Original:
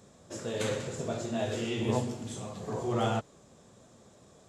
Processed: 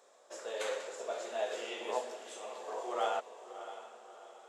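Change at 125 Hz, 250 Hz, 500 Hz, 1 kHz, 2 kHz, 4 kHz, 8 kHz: under -40 dB, -18.5 dB, -3.5 dB, -0.5 dB, -2.0 dB, -4.0 dB, -5.5 dB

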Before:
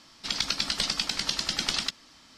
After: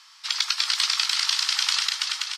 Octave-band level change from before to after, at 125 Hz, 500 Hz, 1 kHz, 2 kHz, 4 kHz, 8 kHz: under -40 dB, under -15 dB, +4.5 dB, +6.0 dB, +6.0 dB, +6.0 dB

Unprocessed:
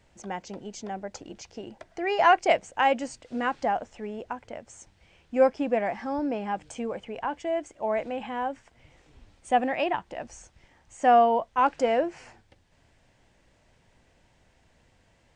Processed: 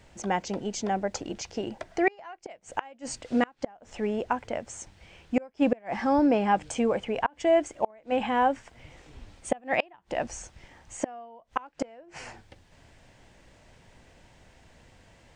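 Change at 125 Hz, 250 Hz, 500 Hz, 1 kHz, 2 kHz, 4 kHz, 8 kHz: n/a, +4.0 dB, -2.0 dB, -4.5 dB, -2.5 dB, -1.5 dB, +6.0 dB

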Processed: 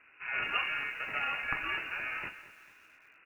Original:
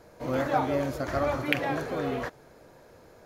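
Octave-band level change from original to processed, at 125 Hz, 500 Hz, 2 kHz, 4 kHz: -21.0, -22.0, +2.5, +0.5 dB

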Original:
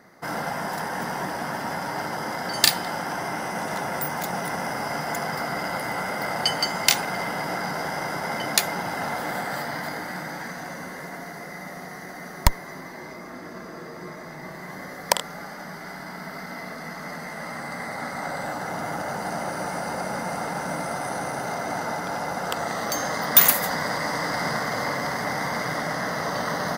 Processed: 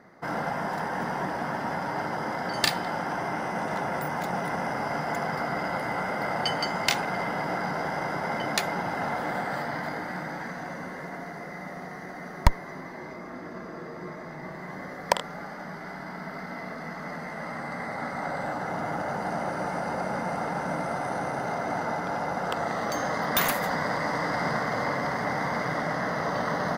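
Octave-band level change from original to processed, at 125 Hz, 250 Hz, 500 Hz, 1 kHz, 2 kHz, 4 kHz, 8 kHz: 0.0, 0.0, -0.5, -1.0, -2.5, -6.5, -11.0 dB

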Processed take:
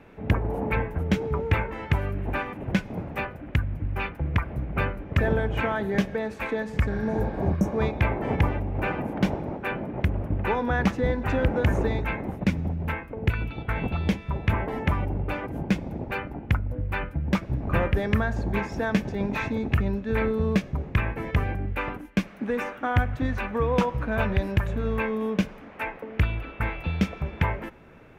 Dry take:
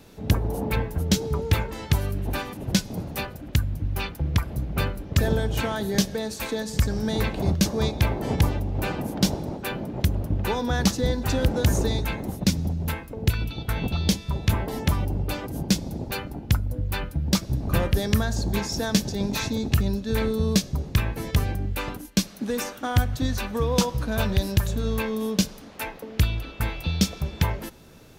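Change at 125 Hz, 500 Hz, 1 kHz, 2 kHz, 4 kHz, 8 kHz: -2.0 dB, +1.0 dB, +2.0 dB, +3.0 dB, -11.0 dB, under -15 dB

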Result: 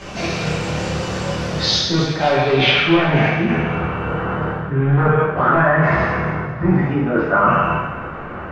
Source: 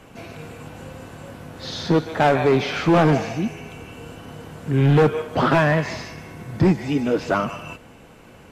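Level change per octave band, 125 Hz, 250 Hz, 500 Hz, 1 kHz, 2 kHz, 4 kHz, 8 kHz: +4.0, +2.5, +2.5, +6.0, +8.0, +12.0, +8.5 dB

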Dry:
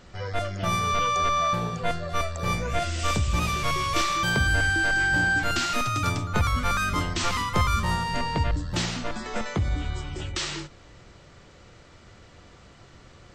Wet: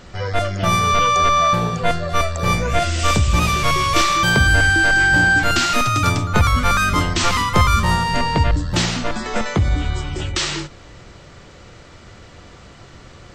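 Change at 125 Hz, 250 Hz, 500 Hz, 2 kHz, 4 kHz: +8.5, +8.5, +8.5, +8.5, +8.5 dB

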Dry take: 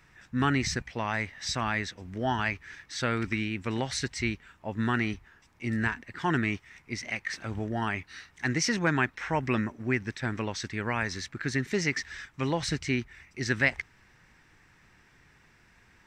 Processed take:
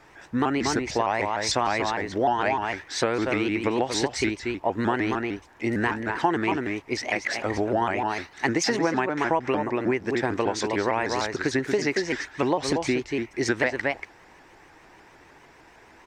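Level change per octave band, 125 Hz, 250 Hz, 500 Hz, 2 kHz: -2.5, +4.5, +10.0, +2.0 dB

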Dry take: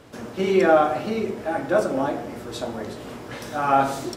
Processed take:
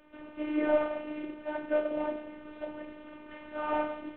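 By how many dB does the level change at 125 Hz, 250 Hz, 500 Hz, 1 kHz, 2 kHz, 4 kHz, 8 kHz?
under -20 dB, -8.5 dB, -10.0 dB, -14.5 dB, -10.5 dB, -15.5 dB, under -40 dB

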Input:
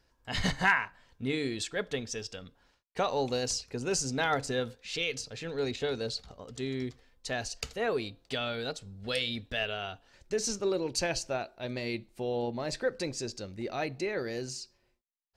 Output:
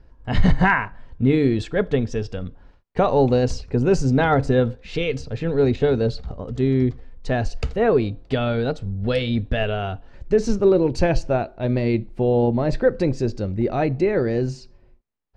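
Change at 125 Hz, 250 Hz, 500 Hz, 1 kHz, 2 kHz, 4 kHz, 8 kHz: +18.5 dB, +15.5 dB, +13.0 dB, +9.5 dB, +5.5 dB, -0.5 dB, n/a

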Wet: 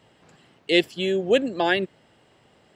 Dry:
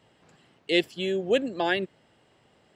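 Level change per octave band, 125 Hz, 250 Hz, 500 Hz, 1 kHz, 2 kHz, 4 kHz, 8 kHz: +4.0 dB, +4.0 dB, +4.0 dB, +4.0 dB, +4.0 dB, +4.0 dB, n/a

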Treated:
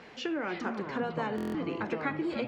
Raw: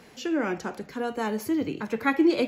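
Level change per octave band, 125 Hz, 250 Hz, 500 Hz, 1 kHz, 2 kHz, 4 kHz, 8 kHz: +0.5 dB, -8.0 dB, -6.0 dB, -4.0 dB, -4.5 dB, -4.0 dB, under -10 dB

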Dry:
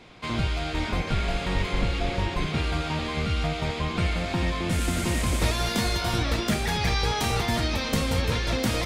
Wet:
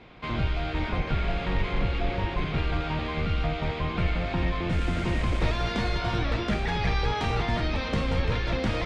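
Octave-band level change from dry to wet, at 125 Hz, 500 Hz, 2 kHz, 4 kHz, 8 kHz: -1.0, -1.0, -2.0, -6.0, -16.0 dB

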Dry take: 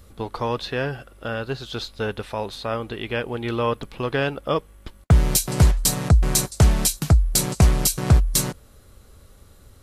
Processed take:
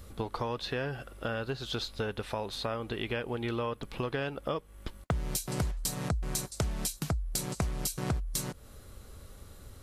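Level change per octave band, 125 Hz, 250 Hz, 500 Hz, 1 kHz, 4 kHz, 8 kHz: -14.5, -10.5, -9.0, -9.5, -9.5, -13.0 dB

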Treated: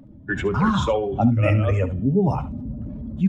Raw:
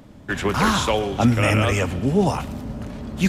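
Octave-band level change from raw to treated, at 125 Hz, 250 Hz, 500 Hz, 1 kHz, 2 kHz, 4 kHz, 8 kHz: +1.5 dB, 0.0 dB, -0.5 dB, -3.0 dB, -5.5 dB, -9.5 dB, under -10 dB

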